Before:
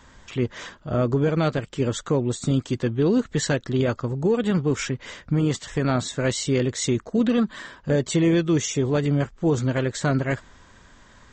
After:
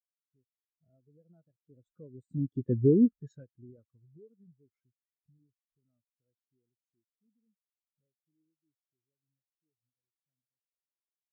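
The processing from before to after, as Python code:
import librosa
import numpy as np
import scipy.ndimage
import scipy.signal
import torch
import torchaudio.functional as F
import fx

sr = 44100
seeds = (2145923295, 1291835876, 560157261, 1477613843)

y = fx.recorder_agc(x, sr, target_db=-14.5, rise_db_per_s=23.0, max_gain_db=30)
y = fx.doppler_pass(y, sr, speed_mps=18, closest_m=4.1, pass_at_s=2.75)
y = fx.spectral_expand(y, sr, expansion=2.5)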